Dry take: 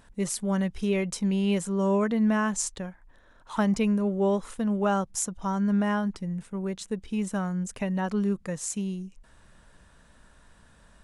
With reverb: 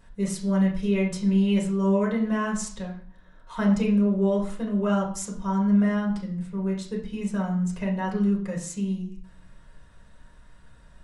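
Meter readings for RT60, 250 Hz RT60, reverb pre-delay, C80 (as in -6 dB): 0.50 s, 0.70 s, 4 ms, 11.5 dB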